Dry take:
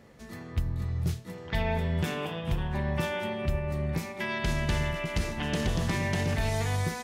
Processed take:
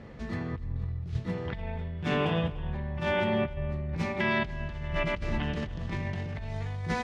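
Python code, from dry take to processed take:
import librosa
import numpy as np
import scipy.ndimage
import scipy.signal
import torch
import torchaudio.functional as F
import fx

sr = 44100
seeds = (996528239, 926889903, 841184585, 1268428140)

y = scipy.signal.sosfilt(scipy.signal.butter(2, 3700.0, 'lowpass', fs=sr, output='sos'), x)
y = fx.low_shelf(y, sr, hz=150.0, db=7.5)
y = fx.over_compress(y, sr, threshold_db=-32.0, ratio=-1.0)
y = y + 10.0 ** (-19.5 / 20.0) * np.pad(y, (int(296 * sr / 1000.0), 0))[:len(y)]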